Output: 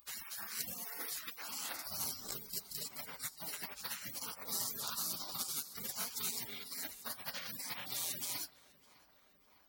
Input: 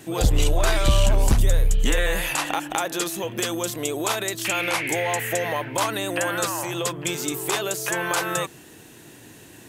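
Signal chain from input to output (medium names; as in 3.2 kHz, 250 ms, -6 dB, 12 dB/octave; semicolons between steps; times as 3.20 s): flange 1.9 Hz, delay 0.2 ms, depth 9.8 ms, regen -37%; tilt EQ +4 dB/octave; hum notches 50/100/150/200/250/300/350/400 Hz; spectral gate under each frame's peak -30 dB weak; on a send: tape echo 603 ms, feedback 79%, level -19.5 dB, low-pass 2.6 kHz; on the sum: transformer saturation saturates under 2.3 kHz; trim +10.5 dB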